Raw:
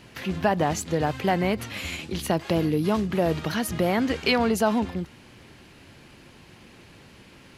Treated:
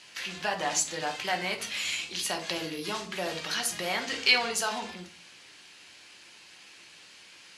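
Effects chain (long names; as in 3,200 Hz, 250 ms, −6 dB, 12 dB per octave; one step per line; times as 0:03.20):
meter weighting curve ITU-R 468
on a send: convolution reverb RT60 0.40 s, pre-delay 5 ms, DRR 2.5 dB
on the sum: level −7 dB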